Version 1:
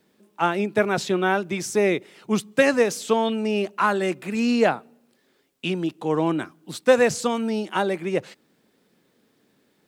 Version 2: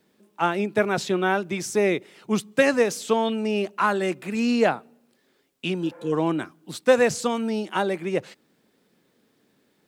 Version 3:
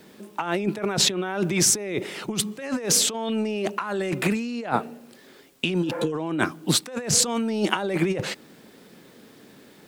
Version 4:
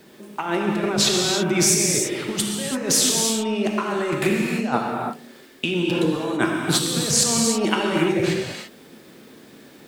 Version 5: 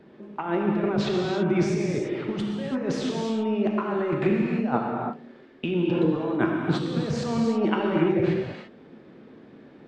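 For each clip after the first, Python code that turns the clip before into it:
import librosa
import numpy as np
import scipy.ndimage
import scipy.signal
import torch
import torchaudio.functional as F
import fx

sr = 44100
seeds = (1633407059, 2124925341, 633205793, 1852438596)

y1 = fx.spec_repair(x, sr, seeds[0], start_s=5.85, length_s=0.25, low_hz=480.0, high_hz=2400.0, source='before')
y1 = y1 * 10.0 ** (-1.0 / 20.0)
y2 = fx.over_compress(y1, sr, threshold_db=-33.0, ratio=-1.0)
y2 = y2 * 10.0 ** (7.0 / 20.0)
y3 = fx.rev_gated(y2, sr, seeds[1], gate_ms=360, shape='flat', drr_db=-1.0)
y4 = fx.spacing_loss(y3, sr, db_at_10k=40)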